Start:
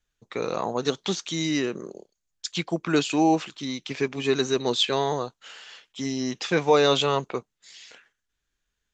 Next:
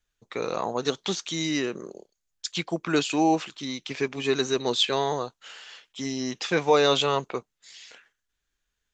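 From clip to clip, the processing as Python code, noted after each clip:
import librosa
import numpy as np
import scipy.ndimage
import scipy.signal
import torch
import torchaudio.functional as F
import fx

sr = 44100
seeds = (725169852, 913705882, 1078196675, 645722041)

y = fx.peak_eq(x, sr, hz=150.0, db=-3.0, octaves=2.7)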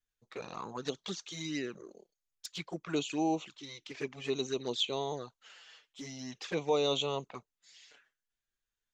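y = fx.env_flanger(x, sr, rest_ms=8.7, full_db=-21.0)
y = y * librosa.db_to_amplitude(-8.0)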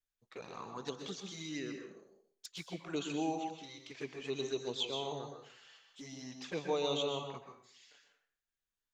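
y = fx.rev_plate(x, sr, seeds[0], rt60_s=0.57, hf_ratio=0.8, predelay_ms=110, drr_db=4.5)
y = y * librosa.db_to_amplitude(-5.0)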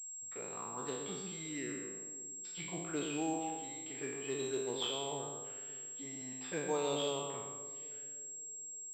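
y = fx.spec_trails(x, sr, decay_s=0.99)
y = fx.echo_bbd(y, sr, ms=565, stages=2048, feedback_pct=40, wet_db=-17.5)
y = fx.pwm(y, sr, carrier_hz=7600.0)
y = y * librosa.db_to_amplitude(-2.5)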